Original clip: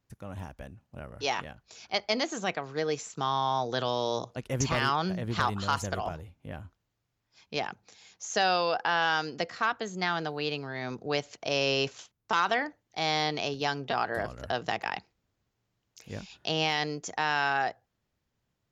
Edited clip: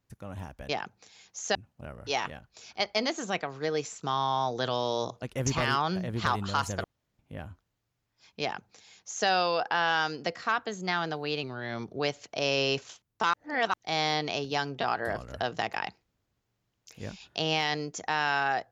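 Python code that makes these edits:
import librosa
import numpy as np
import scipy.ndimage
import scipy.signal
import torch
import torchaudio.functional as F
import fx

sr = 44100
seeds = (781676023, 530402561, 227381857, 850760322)

y = fx.edit(x, sr, fx.room_tone_fill(start_s=5.98, length_s=0.35),
    fx.duplicate(start_s=7.55, length_s=0.86, to_s=0.69),
    fx.speed_span(start_s=10.57, length_s=0.52, speed=0.92),
    fx.reverse_span(start_s=12.43, length_s=0.4), tone=tone)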